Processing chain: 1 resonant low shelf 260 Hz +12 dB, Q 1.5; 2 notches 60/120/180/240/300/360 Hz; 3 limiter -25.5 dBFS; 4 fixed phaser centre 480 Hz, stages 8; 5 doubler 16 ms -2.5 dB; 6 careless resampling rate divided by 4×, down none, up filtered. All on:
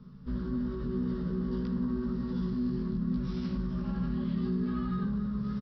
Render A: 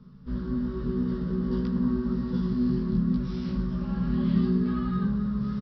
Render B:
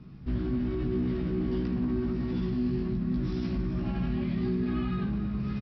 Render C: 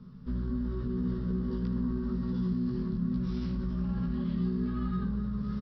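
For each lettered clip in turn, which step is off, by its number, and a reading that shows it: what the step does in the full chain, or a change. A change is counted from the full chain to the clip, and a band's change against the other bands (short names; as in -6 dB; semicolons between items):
3, mean gain reduction 4.0 dB; 4, 1 kHz band -3.0 dB; 2, 125 Hz band +3.0 dB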